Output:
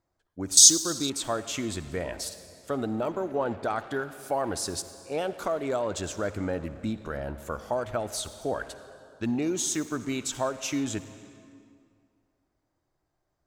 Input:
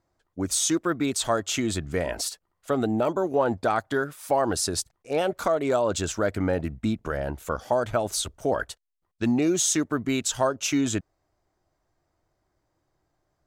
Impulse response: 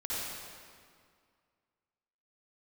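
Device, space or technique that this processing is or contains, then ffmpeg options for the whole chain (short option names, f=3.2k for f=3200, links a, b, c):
saturated reverb return: -filter_complex "[0:a]asplit=2[a][b];[1:a]atrim=start_sample=2205[c];[b][c]afir=irnorm=-1:irlink=0,asoftclip=type=tanh:threshold=-21dB,volume=-13dB[d];[a][d]amix=inputs=2:normalize=0,asettb=1/sr,asplit=3[e][f][g];[e]atrim=end=0.574[h];[f]atrim=start=0.57:end=1.1,asetpts=PTS-STARTPTS,afade=t=in:d=0.004:c=qsin,afade=t=out:st=0.526:d=0.004:c=qsin,highshelf=f=3.2k:t=q:w=3:g=13.5[i];[g]atrim=start=1.096[j];[h][i]acrossfade=d=0.004:c1=hsin:c2=qsin[k];[k][j]acrossfade=d=0.004:c1=qsin:c2=hsin,volume=-6dB"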